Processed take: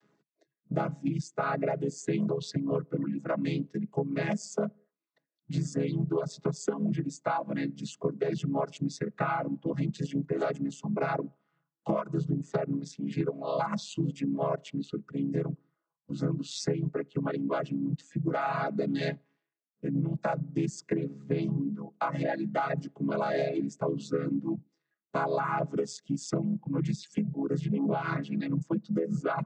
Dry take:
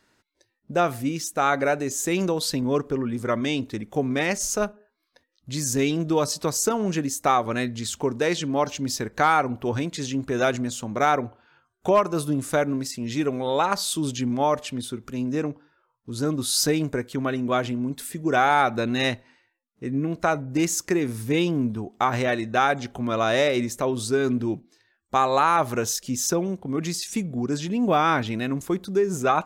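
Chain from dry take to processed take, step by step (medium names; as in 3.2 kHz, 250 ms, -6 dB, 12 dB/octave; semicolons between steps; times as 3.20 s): vocoder on a held chord minor triad, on C#3; reverb removal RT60 1.6 s; compression 10:1, threshold -25 dBFS, peak gain reduction 11 dB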